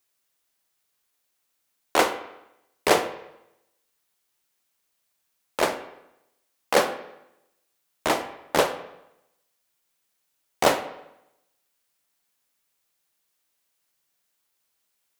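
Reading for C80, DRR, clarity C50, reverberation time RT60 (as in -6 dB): 13.5 dB, 8.5 dB, 11.5 dB, 0.85 s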